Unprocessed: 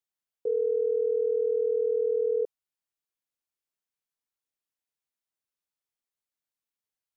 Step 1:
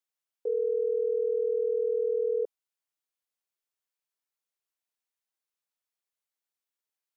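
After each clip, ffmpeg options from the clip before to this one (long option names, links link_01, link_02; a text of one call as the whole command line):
ffmpeg -i in.wav -af "highpass=370" out.wav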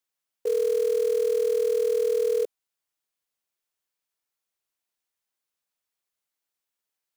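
ffmpeg -i in.wav -af "acrusher=bits=5:mode=log:mix=0:aa=0.000001,volume=4dB" out.wav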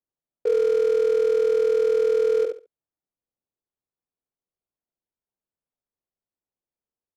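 ffmpeg -i in.wav -filter_complex "[0:a]adynamicsmooth=sensitivity=7:basefreq=610,asplit=2[link_01][link_02];[link_02]aecho=0:1:70|140|210:0.501|0.1|0.02[link_03];[link_01][link_03]amix=inputs=2:normalize=0,volume=4dB" out.wav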